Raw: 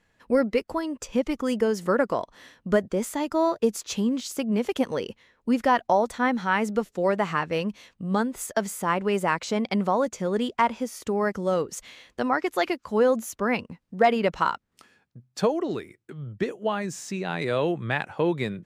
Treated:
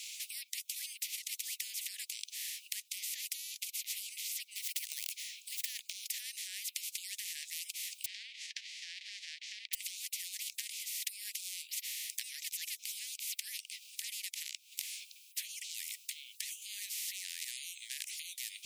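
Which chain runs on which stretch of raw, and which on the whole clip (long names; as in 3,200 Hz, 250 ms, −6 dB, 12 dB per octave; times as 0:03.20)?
0:04.44–0:06.06: running median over 3 samples + downward compressor 2 to 1, threshold −29 dBFS
0:08.04–0:09.73: spectral envelope flattened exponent 0.3 + Chebyshev low-pass filter 1,600 Hz, order 3
whole clip: downward compressor, threshold −34 dBFS; Butterworth high-pass 2,400 Hz 96 dB per octave; every bin compressed towards the loudest bin 10 to 1; level +11 dB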